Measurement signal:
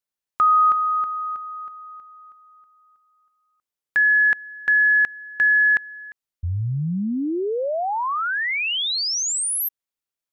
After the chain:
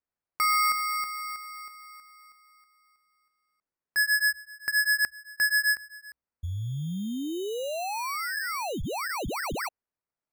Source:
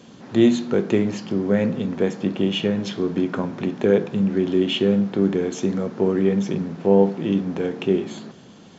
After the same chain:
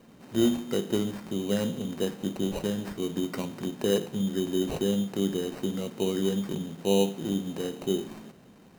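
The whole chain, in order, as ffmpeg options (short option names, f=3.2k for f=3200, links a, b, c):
-af "equalizer=f=64:w=7.5:g=8,acrusher=samples=13:mix=1:aa=0.000001,volume=-8dB"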